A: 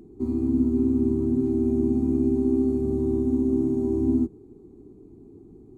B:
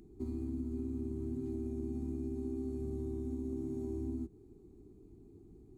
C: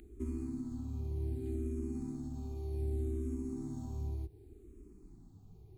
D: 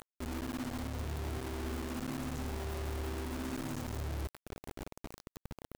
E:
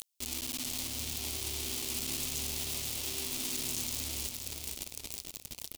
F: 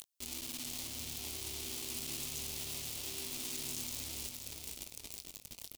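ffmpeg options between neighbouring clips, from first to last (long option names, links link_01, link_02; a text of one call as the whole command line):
ffmpeg -i in.wav -af "equalizer=frequency=125:width_type=o:width=1:gain=-4,equalizer=frequency=250:width_type=o:width=1:gain=-7,equalizer=frequency=500:width_type=o:width=1:gain=-7,equalizer=frequency=1000:width_type=o:width=1:gain=-7,acompressor=threshold=-33dB:ratio=6,volume=-2dB" out.wav
ffmpeg -i in.wav -filter_complex "[0:a]equalizer=frequency=310:width_type=o:width=2.1:gain=-9.5,asplit=2[link_01][link_02];[link_02]afreqshift=-0.66[link_03];[link_01][link_03]amix=inputs=2:normalize=1,volume=9dB" out.wav
ffmpeg -i in.wav -af "areverse,acompressor=threshold=-44dB:ratio=16,areverse,acrusher=bits=7:mix=0:aa=0.000001,volume=8dB" out.wav
ffmpeg -i in.wav -filter_complex "[0:a]aexciter=amount=11.7:drive=2.5:freq=2400,asplit=2[link_01][link_02];[link_02]aecho=0:1:475|950|1425|1900:0.562|0.191|0.065|0.0221[link_03];[link_01][link_03]amix=inputs=2:normalize=0,volume=-7.5dB" out.wav
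ffmpeg -i in.wav -filter_complex "[0:a]asplit=2[link_01][link_02];[link_02]adelay=21,volume=-11.5dB[link_03];[link_01][link_03]amix=inputs=2:normalize=0,volume=-5.5dB" out.wav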